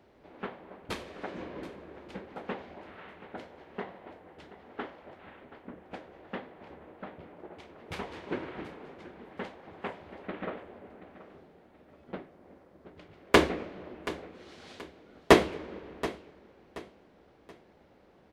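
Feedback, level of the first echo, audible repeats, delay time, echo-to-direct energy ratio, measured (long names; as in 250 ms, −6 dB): 33%, −15.5 dB, 3, 728 ms, −15.0 dB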